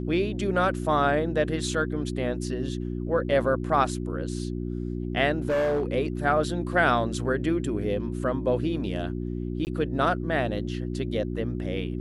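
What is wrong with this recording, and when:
mains hum 60 Hz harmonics 6 −31 dBFS
0:05.38–0:05.92: clipping −21.5 dBFS
0:09.65–0:09.67: drop-out 19 ms

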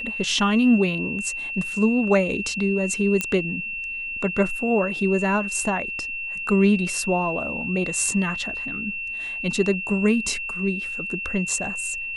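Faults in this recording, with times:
whistle 2,700 Hz −28 dBFS
0:03.21: click −8 dBFS

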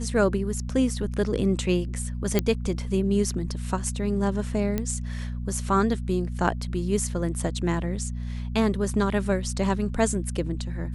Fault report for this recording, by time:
mains hum 60 Hz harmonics 4 −31 dBFS
0:02.39: click −7 dBFS
0:04.78: click −13 dBFS

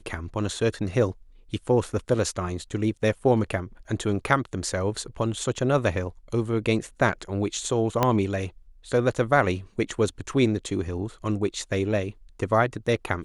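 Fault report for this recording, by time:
0:08.03: click −7 dBFS

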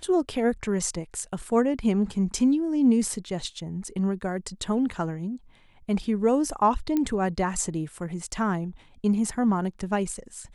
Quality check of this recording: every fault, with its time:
0:06.97: click −14 dBFS

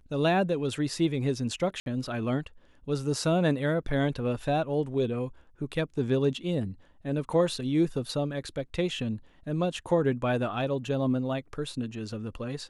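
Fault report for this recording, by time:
0:01.80–0:01.86: drop-out 62 ms

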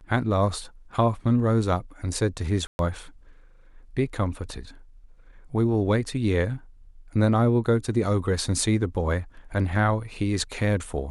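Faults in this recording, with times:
0:02.67–0:02.79: drop-out 121 ms

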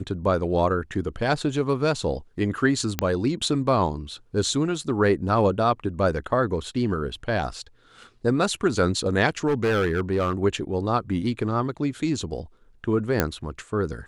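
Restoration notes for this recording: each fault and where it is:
0:02.99: click −6 dBFS
0:09.47–0:10.33: clipping −18 dBFS
0:13.20: click −5 dBFS

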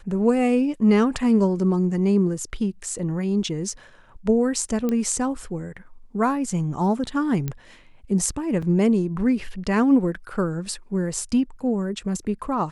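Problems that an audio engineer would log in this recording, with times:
0:04.89: click −13 dBFS
0:07.48: click −14 dBFS
0:08.62: drop-out 5 ms

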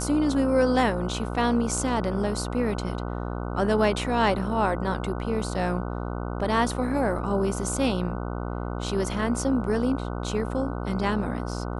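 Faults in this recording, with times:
mains buzz 60 Hz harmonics 25 −31 dBFS

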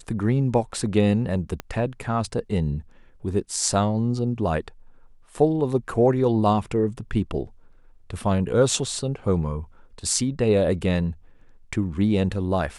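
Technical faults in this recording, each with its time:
0:01.60: click −15 dBFS

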